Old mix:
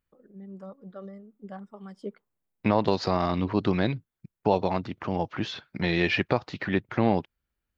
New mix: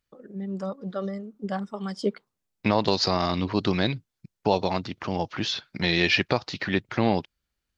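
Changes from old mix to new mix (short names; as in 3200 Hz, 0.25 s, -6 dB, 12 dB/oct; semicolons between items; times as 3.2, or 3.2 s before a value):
first voice +10.5 dB; master: add bell 5300 Hz +12 dB 1.6 oct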